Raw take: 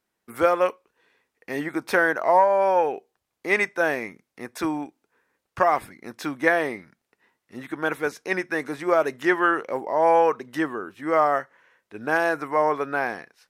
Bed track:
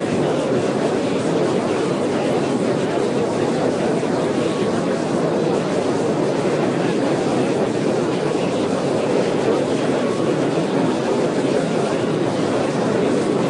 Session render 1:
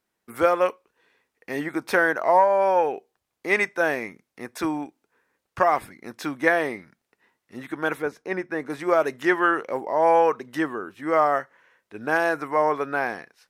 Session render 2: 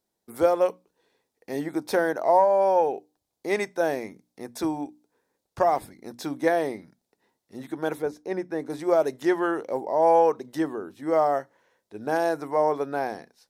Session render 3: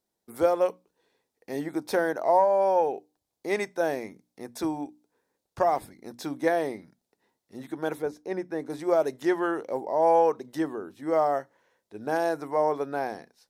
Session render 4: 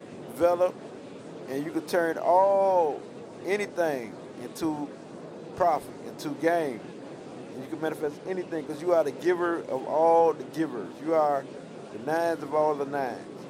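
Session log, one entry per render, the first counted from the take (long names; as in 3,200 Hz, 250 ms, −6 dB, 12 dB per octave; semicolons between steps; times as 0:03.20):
0:08.02–0:08.70: high-shelf EQ 2,000 Hz −12 dB
flat-topped bell 1,800 Hz −10 dB; mains-hum notches 60/120/180/240/300 Hz
level −2 dB
mix in bed track −23 dB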